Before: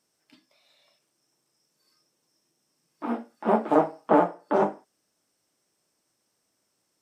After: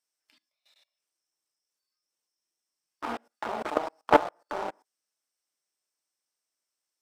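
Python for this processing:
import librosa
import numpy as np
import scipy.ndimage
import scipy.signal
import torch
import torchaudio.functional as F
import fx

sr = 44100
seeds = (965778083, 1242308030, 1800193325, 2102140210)

p1 = np.sign(x) * np.maximum(np.abs(x) - 10.0 ** (-33.0 / 20.0), 0.0)
p2 = x + (p1 * 10.0 ** (-8.0 / 20.0))
p3 = fx.highpass(p2, sr, hz=1400.0, slope=6)
p4 = fx.level_steps(p3, sr, step_db=22)
p5 = fx.leveller(p4, sr, passes=2)
y = p5 * 10.0 ** (5.0 / 20.0)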